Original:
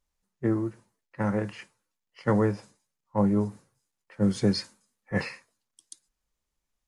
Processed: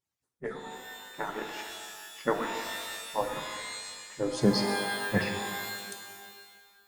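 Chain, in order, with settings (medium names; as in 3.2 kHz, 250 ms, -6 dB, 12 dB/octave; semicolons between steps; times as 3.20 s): harmonic-percussive separation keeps percussive; pitch-shifted reverb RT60 1.7 s, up +12 st, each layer -2 dB, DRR 5 dB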